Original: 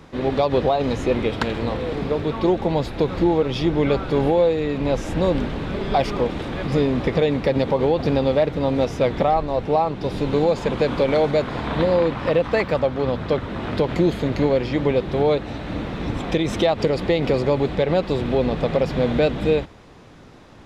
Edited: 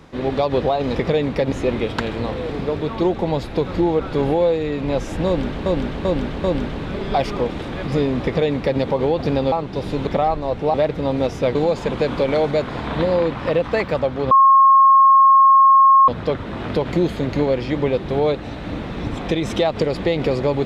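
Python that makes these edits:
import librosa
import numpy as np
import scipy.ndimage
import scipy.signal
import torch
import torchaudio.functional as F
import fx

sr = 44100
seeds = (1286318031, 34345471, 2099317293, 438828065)

y = fx.edit(x, sr, fx.cut(start_s=3.44, length_s=0.54),
    fx.repeat(start_s=5.24, length_s=0.39, count=4),
    fx.duplicate(start_s=7.03, length_s=0.57, to_s=0.95),
    fx.swap(start_s=8.32, length_s=0.81, other_s=9.8, other_length_s=0.55),
    fx.insert_tone(at_s=13.11, length_s=1.77, hz=1080.0, db=-7.5), tone=tone)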